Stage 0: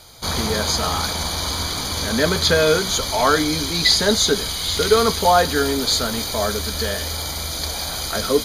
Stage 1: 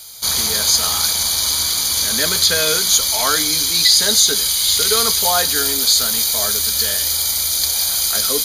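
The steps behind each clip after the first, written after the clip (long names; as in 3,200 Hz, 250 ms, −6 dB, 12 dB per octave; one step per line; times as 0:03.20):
first-order pre-emphasis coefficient 0.9
boost into a limiter +12.5 dB
level −1 dB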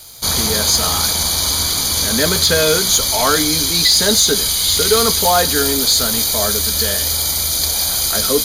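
tilt shelving filter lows +5 dB, about 880 Hz
leveller curve on the samples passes 1
level +1.5 dB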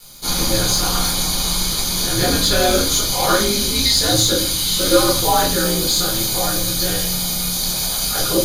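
ring modulation 100 Hz
convolution reverb RT60 0.45 s, pre-delay 6 ms, DRR −5.5 dB
level −7.5 dB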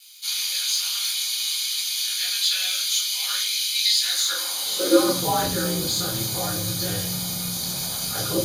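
high-pass filter sweep 2,700 Hz → 100 Hz, 0:04.00–0:05.45
level −7 dB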